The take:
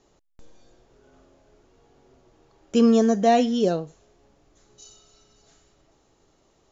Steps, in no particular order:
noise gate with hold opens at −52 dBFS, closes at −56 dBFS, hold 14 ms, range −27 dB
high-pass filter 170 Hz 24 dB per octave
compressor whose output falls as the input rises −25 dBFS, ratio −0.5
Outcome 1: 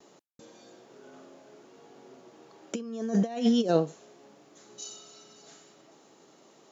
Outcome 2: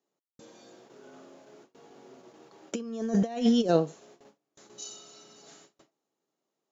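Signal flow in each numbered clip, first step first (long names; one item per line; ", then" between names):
compressor whose output falls as the input rises, then high-pass filter, then noise gate with hold
high-pass filter, then noise gate with hold, then compressor whose output falls as the input rises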